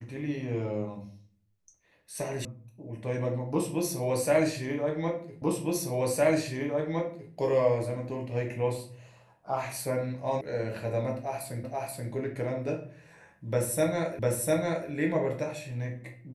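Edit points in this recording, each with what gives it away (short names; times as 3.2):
2.45 sound cut off
5.42 repeat of the last 1.91 s
10.41 sound cut off
11.64 repeat of the last 0.48 s
14.19 repeat of the last 0.7 s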